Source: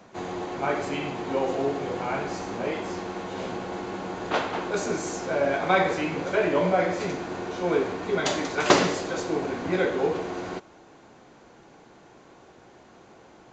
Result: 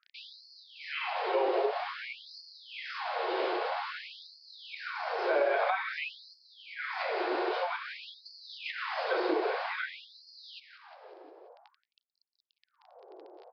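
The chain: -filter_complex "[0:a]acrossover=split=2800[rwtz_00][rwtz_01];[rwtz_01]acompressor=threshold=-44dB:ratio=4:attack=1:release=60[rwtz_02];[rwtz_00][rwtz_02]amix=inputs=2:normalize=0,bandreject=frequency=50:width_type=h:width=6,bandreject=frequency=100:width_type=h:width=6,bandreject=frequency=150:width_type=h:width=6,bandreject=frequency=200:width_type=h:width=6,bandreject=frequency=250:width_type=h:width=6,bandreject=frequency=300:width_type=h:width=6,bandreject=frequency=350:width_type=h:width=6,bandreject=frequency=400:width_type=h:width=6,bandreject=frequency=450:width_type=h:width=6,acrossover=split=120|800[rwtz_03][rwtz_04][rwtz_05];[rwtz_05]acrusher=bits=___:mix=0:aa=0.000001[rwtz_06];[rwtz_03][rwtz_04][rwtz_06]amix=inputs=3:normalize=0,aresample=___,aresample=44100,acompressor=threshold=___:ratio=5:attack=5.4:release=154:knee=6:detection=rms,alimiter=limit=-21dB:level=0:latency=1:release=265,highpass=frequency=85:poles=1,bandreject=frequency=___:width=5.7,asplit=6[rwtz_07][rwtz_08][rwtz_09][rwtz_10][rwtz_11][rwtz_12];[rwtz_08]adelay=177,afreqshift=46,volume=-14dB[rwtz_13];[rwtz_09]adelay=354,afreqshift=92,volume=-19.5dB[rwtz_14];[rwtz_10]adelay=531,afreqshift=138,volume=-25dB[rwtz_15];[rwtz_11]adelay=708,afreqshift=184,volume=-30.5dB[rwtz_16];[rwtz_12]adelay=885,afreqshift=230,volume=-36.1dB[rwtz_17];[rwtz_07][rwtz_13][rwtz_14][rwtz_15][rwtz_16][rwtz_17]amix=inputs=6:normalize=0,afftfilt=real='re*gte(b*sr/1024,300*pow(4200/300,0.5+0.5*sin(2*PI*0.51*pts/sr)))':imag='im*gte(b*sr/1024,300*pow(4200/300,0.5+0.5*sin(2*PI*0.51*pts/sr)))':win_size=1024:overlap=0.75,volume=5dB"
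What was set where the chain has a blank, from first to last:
7, 11025, -28dB, 200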